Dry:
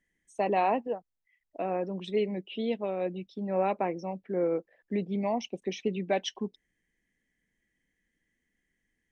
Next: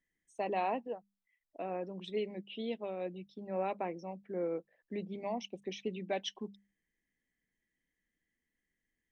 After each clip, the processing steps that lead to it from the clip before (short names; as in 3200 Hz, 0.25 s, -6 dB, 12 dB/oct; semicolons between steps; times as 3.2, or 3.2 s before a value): dynamic EQ 3400 Hz, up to +4 dB, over -53 dBFS, Q 1.9; notches 50/100/150/200 Hz; gain -7.5 dB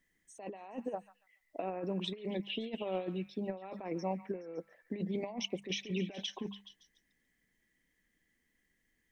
negative-ratio compressor -41 dBFS, ratio -0.5; delay with a stepping band-pass 0.141 s, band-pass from 1500 Hz, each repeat 0.7 oct, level -8.5 dB; gain +4 dB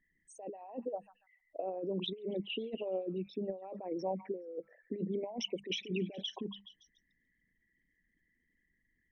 formant sharpening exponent 2